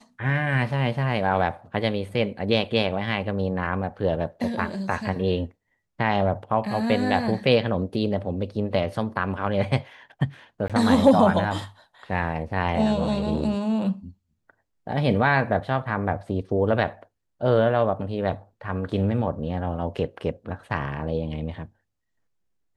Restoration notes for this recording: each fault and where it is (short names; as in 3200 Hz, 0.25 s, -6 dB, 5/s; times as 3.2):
10.68–10.7 gap 17 ms